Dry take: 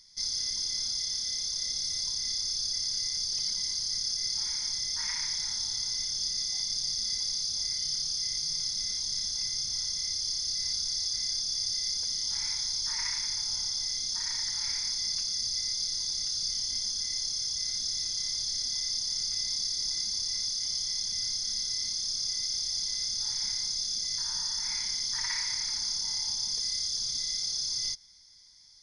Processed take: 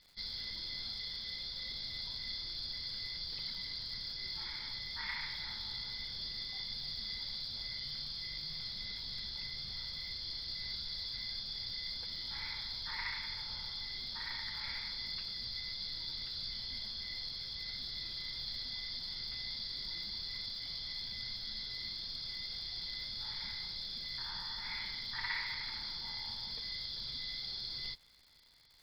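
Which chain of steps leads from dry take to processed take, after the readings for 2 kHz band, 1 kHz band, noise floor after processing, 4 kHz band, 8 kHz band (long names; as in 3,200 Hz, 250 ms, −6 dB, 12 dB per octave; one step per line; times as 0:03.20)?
+1.0 dB, 0.0 dB, −44 dBFS, −8.5 dB, below −30 dB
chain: elliptic low-pass filter 4,200 Hz, stop band 40 dB
notch filter 1,000 Hz, Q 26
surface crackle 250 per second −54 dBFS
level +1 dB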